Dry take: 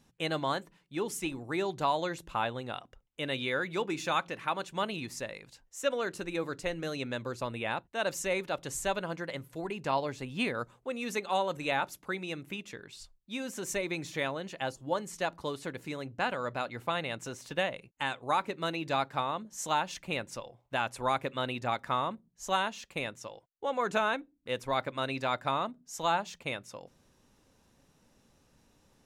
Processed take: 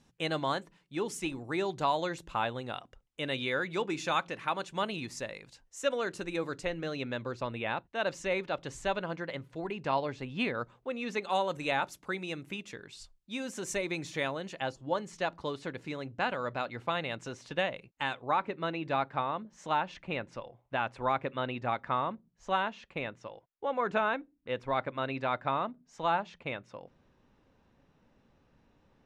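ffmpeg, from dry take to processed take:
-af "asetnsamples=n=441:p=0,asendcmd='6.65 lowpass f 4300;11.22 lowpass f 9400;14.6 lowpass f 5200;18.22 lowpass f 2700',lowpass=8.8k"

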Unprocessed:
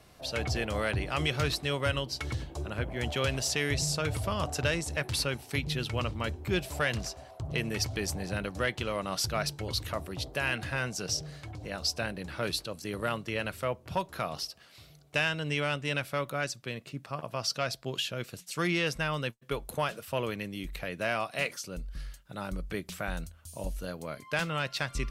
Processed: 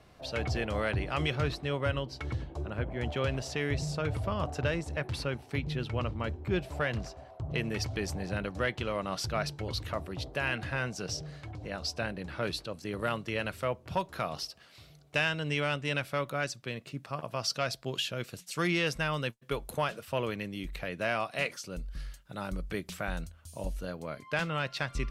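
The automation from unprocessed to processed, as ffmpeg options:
-af "asetnsamples=n=441:p=0,asendcmd='1.35 lowpass f 1600;7.54 lowpass f 3300;12.99 lowpass f 6900;16.86 lowpass f 12000;19.79 lowpass f 5800;21.7 lowpass f 11000;22.97 lowpass f 6200;23.81 lowpass f 3700',lowpass=f=3.1k:p=1"

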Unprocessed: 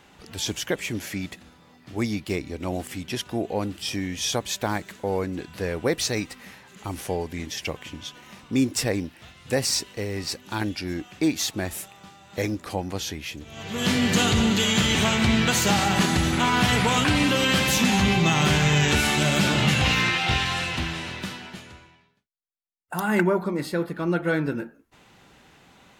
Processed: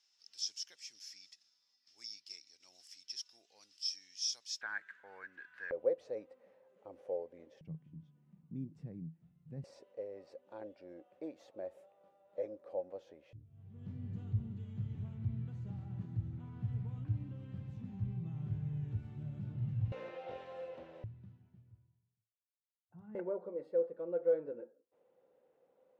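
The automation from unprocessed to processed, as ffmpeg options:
-af "asetnsamples=n=441:p=0,asendcmd='4.61 bandpass f 1600;5.71 bandpass f 530;7.61 bandpass f 160;9.64 bandpass f 550;13.33 bandpass f 110;19.92 bandpass f 530;21.04 bandpass f 110;23.15 bandpass f 510',bandpass=f=5.3k:t=q:w=13:csg=0"

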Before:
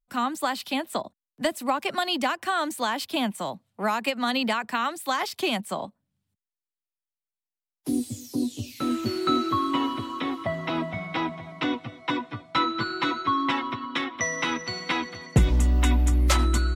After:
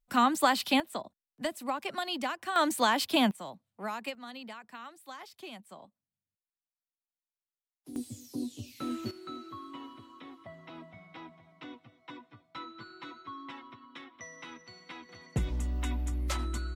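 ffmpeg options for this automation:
-af "asetnsamples=n=441:p=0,asendcmd='0.8 volume volume -8dB;2.56 volume volume 1dB;3.31 volume volume -11dB;4.15 volume volume -19dB;7.96 volume volume -9dB;9.11 volume volume -19.5dB;15.09 volume volume -12dB',volume=2dB"

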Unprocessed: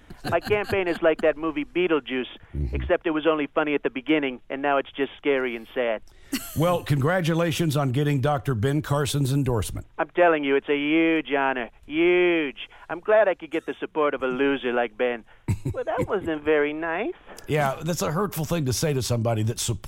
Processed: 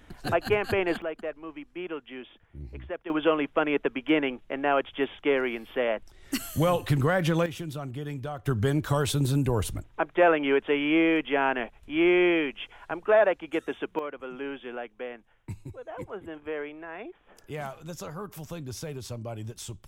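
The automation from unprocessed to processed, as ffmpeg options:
-af "asetnsamples=n=441:p=0,asendcmd='1.02 volume volume -13.5dB;3.1 volume volume -2dB;7.46 volume volume -12.5dB;8.46 volume volume -2dB;13.99 volume volume -13dB',volume=-2dB"

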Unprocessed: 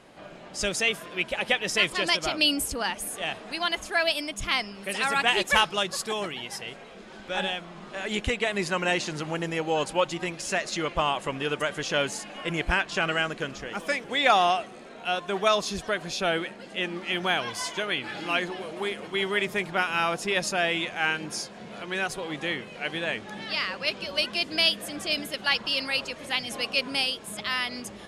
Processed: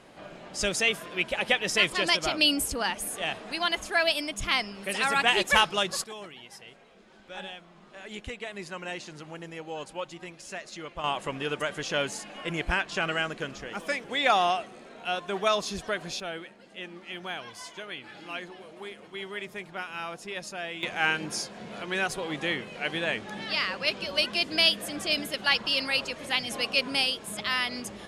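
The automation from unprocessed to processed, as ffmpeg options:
-af "asetnsamples=n=441:p=0,asendcmd='6.04 volume volume -11dB;11.04 volume volume -2.5dB;16.2 volume volume -10.5dB;20.83 volume volume 0.5dB',volume=0dB"

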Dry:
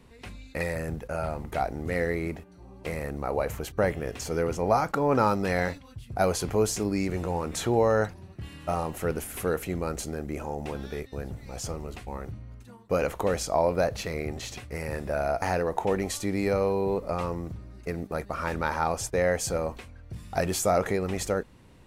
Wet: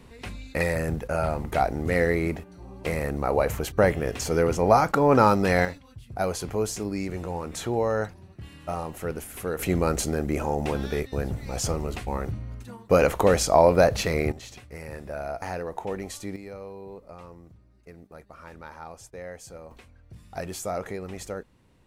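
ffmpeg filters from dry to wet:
-af "asetnsamples=n=441:p=0,asendcmd='5.65 volume volume -2.5dB;9.59 volume volume 7dB;14.32 volume volume -5.5dB;16.36 volume volume -14.5dB;19.71 volume volume -7dB',volume=5dB"

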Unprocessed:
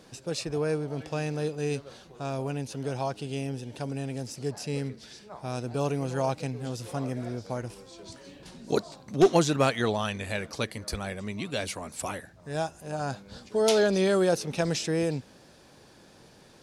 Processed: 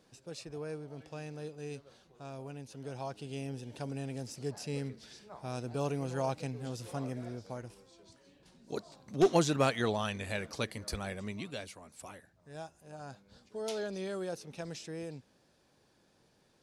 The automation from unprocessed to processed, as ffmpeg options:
-af "volume=4.5dB,afade=t=in:st=2.65:d=1.08:silence=0.446684,afade=t=out:st=6.96:d=1.17:silence=0.354813,afade=t=in:st=8.65:d=0.74:silence=0.316228,afade=t=out:st=11.27:d=0.43:silence=0.316228"

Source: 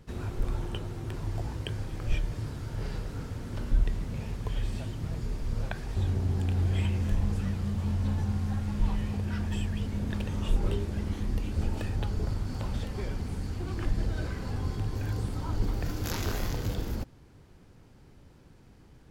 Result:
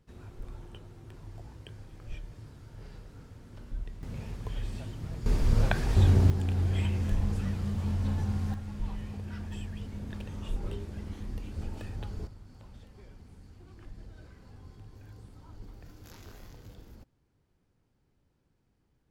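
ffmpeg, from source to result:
-af "asetnsamples=n=441:p=0,asendcmd='4.03 volume volume -4dB;5.26 volume volume 7.5dB;6.3 volume volume -1dB;8.54 volume volume -7.5dB;12.27 volume volume -18dB',volume=-12.5dB"

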